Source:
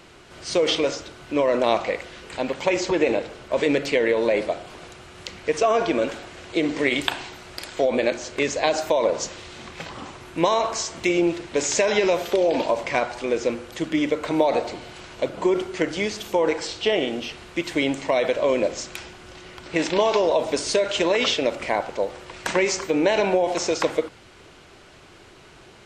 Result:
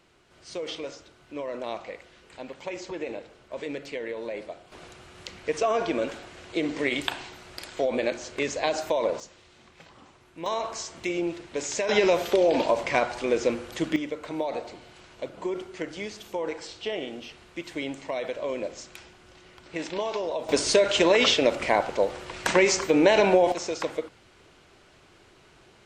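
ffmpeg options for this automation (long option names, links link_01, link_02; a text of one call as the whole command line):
ffmpeg -i in.wav -af "asetnsamples=nb_out_samples=441:pad=0,asendcmd='4.72 volume volume -5dB;9.2 volume volume -16dB;10.46 volume volume -8dB;11.89 volume volume -1dB;13.96 volume volume -10dB;20.49 volume volume 1dB;23.52 volume volume -7.5dB',volume=-13.5dB" out.wav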